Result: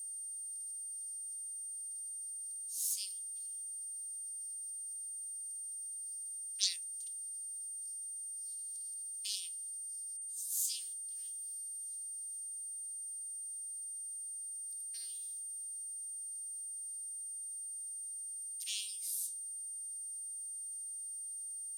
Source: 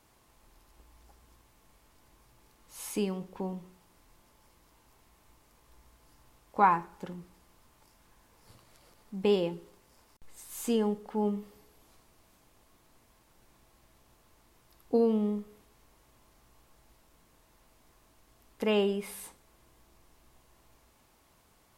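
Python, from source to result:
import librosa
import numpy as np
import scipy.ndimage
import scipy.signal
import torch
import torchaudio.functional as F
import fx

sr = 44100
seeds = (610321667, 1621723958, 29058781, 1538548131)

y = fx.cheby_harmonics(x, sr, harmonics=(6,), levels_db=(-10,), full_scale_db=-11.5)
y = y + 10.0 ** (-47.0 / 20.0) * np.sin(2.0 * np.pi * 8800.0 * np.arange(len(y)) / sr)
y = scipy.signal.sosfilt(scipy.signal.cheby2(4, 70, 1100.0, 'highpass', fs=sr, output='sos'), y)
y = F.gain(torch.from_numpy(y), 6.0).numpy()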